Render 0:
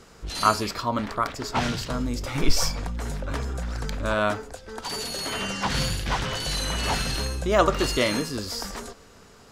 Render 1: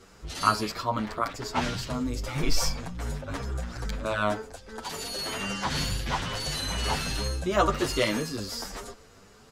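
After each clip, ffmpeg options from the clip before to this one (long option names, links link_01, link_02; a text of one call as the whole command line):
ffmpeg -i in.wav -filter_complex "[0:a]asplit=2[link_01][link_02];[link_02]adelay=8.3,afreqshift=2.4[link_03];[link_01][link_03]amix=inputs=2:normalize=1" out.wav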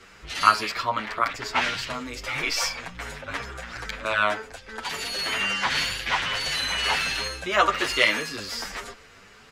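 ffmpeg -i in.wav -filter_complex "[0:a]equalizer=frequency=2200:width_type=o:width=1.8:gain=13,acrossover=split=330|4200[link_01][link_02][link_03];[link_01]acompressor=threshold=-39dB:ratio=6[link_04];[link_04][link_02][link_03]amix=inputs=3:normalize=0,volume=-1.5dB" out.wav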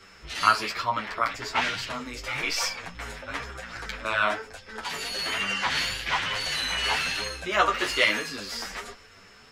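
ffmpeg -i in.wav -af "aeval=exprs='val(0)+0.00158*sin(2*PI*5300*n/s)':channel_layout=same,flanger=delay=9.5:depth=8:regen=-34:speed=1.1:shape=sinusoidal,volume=2dB" out.wav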